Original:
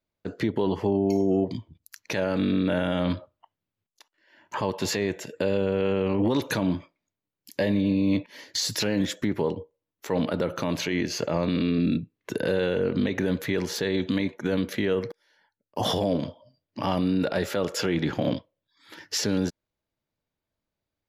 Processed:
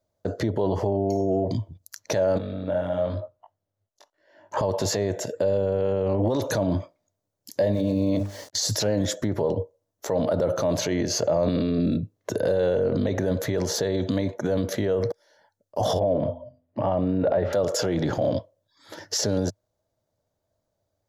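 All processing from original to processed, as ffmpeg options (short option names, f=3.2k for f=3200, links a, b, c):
-filter_complex "[0:a]asettb=1/sr,asplit=3[a][b][c];[a]atrim=end=2.384[d];[b]atrim=start=2.38:end=4.57,asetpts=PTS-STARTPTS,afade=t=in:d=0.004:c=qsin,afade=t=out:st=2.186:d=0.004:c=qsin,bass=f=250:g=-2,treble=f=4k:g=-6,acompressor=threshold=-29dB:ratio=6:attack=3.2:release=140:knee=1:detection=peak,flanger=delay=19:depth=2.2:speed=1[e];[c]atrim=start=4.566[f];[d][e]acrossfade=d=0.004:c1=hsin:c2=qsin[g];[g][f]acrossfade=d=0.004:c1=qsin:c2=hsin,asettb=1/sr,asplit=3[h][i][j];[h]atrim=end=7.734[k];[i]atrim=start=7.73:end=8.53,asetpts=PTS-STARTPTS,afade=t=in:d=0.004:c=qsin,afade=t=out:st=0.796:d=0.004:c=qsin,bandreject=f=50:t=h:w=6,bandreject=f=100:t=h:w=6,bandreject=f=150:t=h:w=6,bandreject=f=200:t=h:w=6,bandreject=f=250:t=h:w=6,bandreject=f=300:t=h:w=6,bandreject=f=350:t=h:w=6,bandreject=f=400:t=h:w=6,bandreject=f=450:t=h:w=6,aeval=exprs='val(0)*gte(abs(val(0)),0.00473)':c=same[l];[j]atrim=start=8.526[m];[k][l]acrossfade=d=0.004:c1=hsin:c2=qsin[n];[n][m]acrossfade=d=0.004:c1=qsin:c2=hsin,asettb=1/sr,asplit=3[o][p][q];[o]atrim=end=15.994[r];[p]atrim=start=15.99:end=17.53,asetpts=PTS-STARTPTS,afade=t=in:d=0.004:c=qsin,afade=t=out:st=1.536:d=0.004:c=qsin,lowpass=f=2.7k:w=0.5412,lowpass=f=2.7k:w=1.3066,equalizer=f=1.5k:t=o:w=0.28:g=-3,bandreject=f=84.13:t=h:w=4,bandreject=f=168.26:t=h:w=4,bandreject=f=252.39:t=h:w=4[s];[q]atrim=start=17.526[t];[r][s]acrossfade=d=0.004:c1=hsin:c2=qsin[u];[u][t]acrossfade=d=0.004:c1=qsin:c2=hsin,equalizer=f=100:t=o:w=0.67:g=10,equalizer=f=630:t=o:w=0.67:g=11,equalizer=f=2.5k:t=o:w=0.67:g=-9,equalizer=f=6.3k:t=o:w=0.67:g=6,alimiter=limit=-19.5dB:level=0:latency=1:release=38,equalizer=f=540:w=1.5:g=2.5,volume=3dB"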